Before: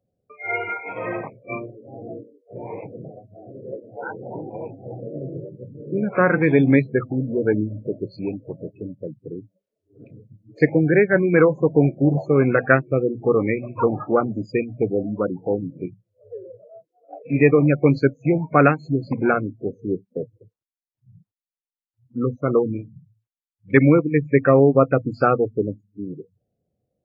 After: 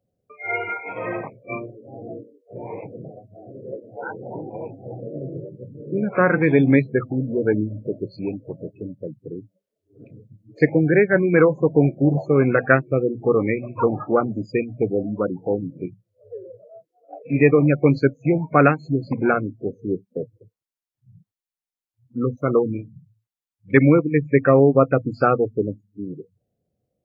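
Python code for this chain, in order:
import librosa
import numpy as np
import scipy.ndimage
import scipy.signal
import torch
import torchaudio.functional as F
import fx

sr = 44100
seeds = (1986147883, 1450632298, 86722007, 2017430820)

y = fx.high_shelf(x, sr, hz=3100.0, db=9.5, at=(22.37, 22.81))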